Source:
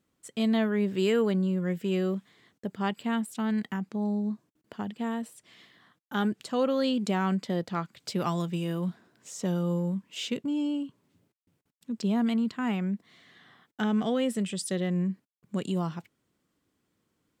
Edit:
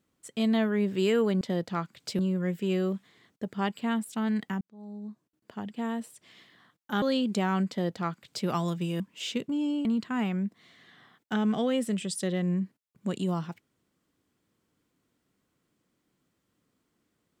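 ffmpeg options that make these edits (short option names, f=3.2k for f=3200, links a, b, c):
-filter_complex "[0:a]asplit=7[a][b][c][d][e][f][g];[a]atrim=end=1.412[h];[b]atrim=start=7.408:end=8.192[i];[c]atrim=start=1.408:end=3.83,asetpts=PTS-STARTPTS,afade=t=out:st=2.418:d=0.004:c=hsin[j];[d]atrim=start=3.83:end=6.242,asetpts=PTS-STARTPTS,afade=t=in:d=1.33[k];[e]atrim=start=6.738:end=8.722[l];[f]atrim=start=9.958:end=10.812[m];[g]atrim=start=12.328[n];[h][i]acrossfade=d=0.004:c1=hsin:c2=hsin[o];[j][k]concat=n=2:v=0:a=1[p];[o][p]acrossfade=d=0.004:c1=hsin:c2=hsin[q];[q][l]acrossfade=d=0.004:c1=hsin:c2=hsin[r];[r][m]acrossfade=d=0.004:c1=hsin:c2=hsin[s];[s][n]acrossfade=d=0.004:c1=hsin:c2=hsin"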